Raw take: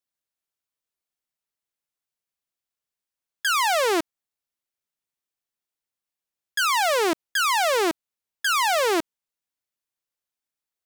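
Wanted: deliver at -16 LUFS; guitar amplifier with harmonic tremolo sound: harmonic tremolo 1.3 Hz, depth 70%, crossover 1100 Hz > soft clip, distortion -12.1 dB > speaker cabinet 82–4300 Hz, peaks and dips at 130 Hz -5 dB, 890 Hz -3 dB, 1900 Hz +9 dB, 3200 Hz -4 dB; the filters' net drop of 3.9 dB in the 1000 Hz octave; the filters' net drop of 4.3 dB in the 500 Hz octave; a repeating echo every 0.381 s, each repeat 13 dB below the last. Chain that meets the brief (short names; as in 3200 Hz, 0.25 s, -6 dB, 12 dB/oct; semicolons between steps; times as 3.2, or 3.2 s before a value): bell 500 Hz -4.5 dB; bell 1000 Hz -3 dB; feedback echo 0.381 s, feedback 22%, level -13 dB; harmonic tremolo 1.3 Hz, depth 70%, crossover 1100 Hz; soft clip -23.5 dBFS; speaker cabinet 82–4300 Hz, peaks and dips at 130 Hz -5 dB, 890 Hz -3 dB, 1900 Hz +9 dB, 3200 Hz -4 dB; gain +14.5 dB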